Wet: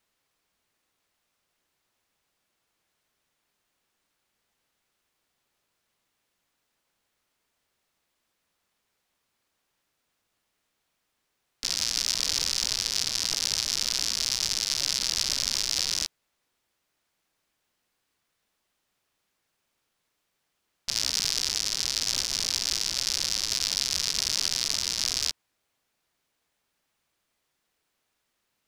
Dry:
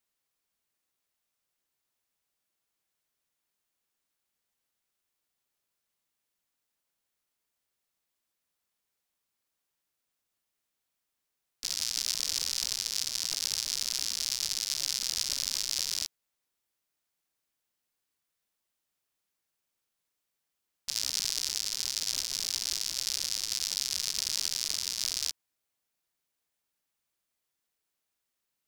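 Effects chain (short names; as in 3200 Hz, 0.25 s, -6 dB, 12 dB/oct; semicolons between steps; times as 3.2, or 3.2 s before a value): LPF 4000 Hz 6 dB/oct; in parallel at -3 dB: soft clip -27 dBFS, distortion -8 dB; on the sum: Doppler distortion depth 0.18 ms; gain +6.5 dB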